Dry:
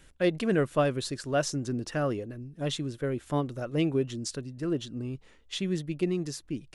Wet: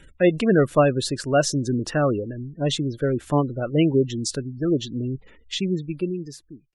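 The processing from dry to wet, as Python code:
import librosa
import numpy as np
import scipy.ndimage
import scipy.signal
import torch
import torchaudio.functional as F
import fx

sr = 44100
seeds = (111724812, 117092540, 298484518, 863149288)

y = fx.fade_out_tail(x, sr, length_s=1.35)
y = fx.spec_gate(y, sr, threshold_db=-25, keep='strong')
y = fx.dynamic_eq(y, sr, hz=920.0, q=3.6, threshold_db=-59.0, ratio=4.0, max_db=7, at=(4.34, 4.93))
y = F.gain(torch.from_numpy(y), 8.0).numpy()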